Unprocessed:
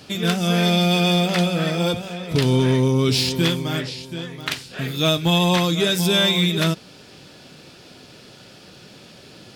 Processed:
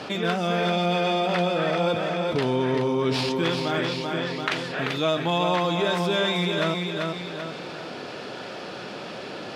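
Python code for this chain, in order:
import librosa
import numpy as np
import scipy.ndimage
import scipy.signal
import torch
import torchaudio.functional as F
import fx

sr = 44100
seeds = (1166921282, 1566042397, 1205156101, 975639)

p1 = fx.tracing_dist(x, sr, depth_ms=0.026)
p2 = fx.rider(p1, sr, range_db=4, speed_s=0.5)
p3 = p1 + (p2 * librosa.db_to_amplitude(1.0))
p4 = fx.bandpass_q(p3, sr, hz=850.0, q=0.69)
p5 = fx.echo_feedback(p4, sr, ms=388, feedback_pct=27, wet_db=-7)
p6 = fx.env_flatten(p5, sr, amount_pct=50)
y = p6 * librosa.db_to_amplitude(-7.5)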